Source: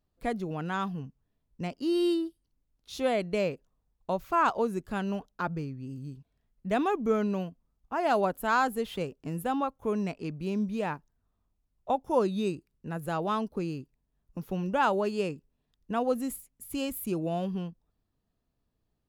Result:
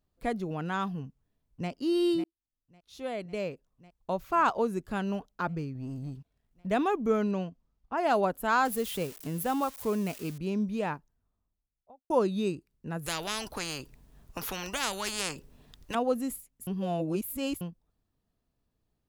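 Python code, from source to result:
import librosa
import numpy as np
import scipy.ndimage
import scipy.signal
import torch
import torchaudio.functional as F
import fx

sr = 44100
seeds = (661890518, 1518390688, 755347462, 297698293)

y = fx.echo_throw(x, sr, start_s=1.03, length_s=0.67, ms=550, feedback_pct=70, wet_db=-10.5)
y = fx.leveller(y, sr, passes=1, at=(5.75, 6.67))
y = fx.lowpass(y, sr, hz=fx.line((7.31, 8800.0), (7.96, 5200.0)), slope=24, at=(7.31, 7.96), fade=0.02)
y = fx.crossing_spikes(y, sr, level_db=-32.0, at=(8.65, 10.38))
y = fx.studio_fade_out(y, sr, start_s=10.9, length_s=1.2)
y = fx.spectral_comp(y, sr, ratio=4.0, at=(13.06, 15.95))
y = fx.edit(y, sr, fx.fade_in_span(start_s=2.24, length_s=2.16),
    fx.reverse_span(start_s=16.67, length_s=0.94), tone=tone)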